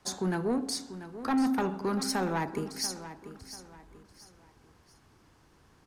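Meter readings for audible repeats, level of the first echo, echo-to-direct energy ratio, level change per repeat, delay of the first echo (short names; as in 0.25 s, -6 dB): 3, -13.0 dB, -12.5 dB, -9.5 dB, 0.689 s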